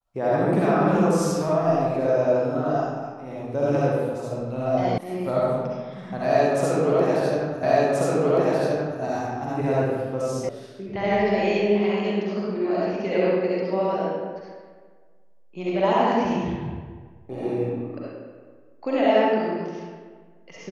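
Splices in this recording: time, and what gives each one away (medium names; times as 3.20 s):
4.98 s: sound stops dead
7.63 s: repeat of the last 1.38 s
10.49 s: sound stops dead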